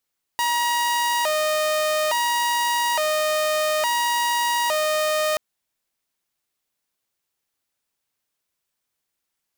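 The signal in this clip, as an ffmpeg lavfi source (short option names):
-f lavfi -i "aevalsrc='0.141*(2*mod((784*t+168/0.58*(0.5-abs(mod(0.58*t,1)-0.5))),1)-1)':d=4.98:s=44100"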